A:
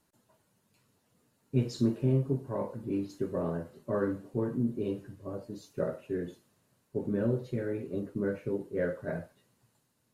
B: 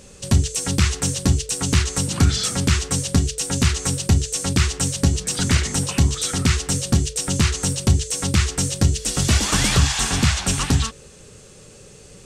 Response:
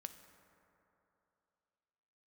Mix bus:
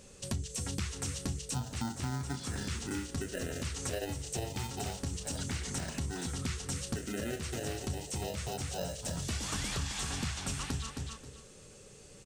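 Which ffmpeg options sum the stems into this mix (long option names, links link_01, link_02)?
-filter_complex "[0:a]acrusher=samples=39:mix=1:aa=0.000001,asplit=2[link_01][link_02];[link_02]afreqshift=0.27[link_03];[link_01][link_03]amix=inputs=2:normalize=1,volume=1dB,asplit=2[link_04][link_05];[1:a]bandreject=frequency=60:width_type=h:width=6,bandreject=frequency=120:width_type=h:width=6,bandreject=frequency=180:width_type=h:width=6,volume=-9.5dB,asplit=2[link_06][link_07];[link_07]volume=-9dB[link_08];[link_05]apad=whole_len=540295[link_09];[link_06][link_09]sidechaincompress=threshold=-38dB:ratio=4:attack=5.2:release=340[link_10];[link_08]aecho=0:1:267|534|801:1|0.19|0.0361[link_11];[link_04][link_10][link_11]amix=inputs=3:normalize=0,acompressor=threshold=-35dB:ratio=3"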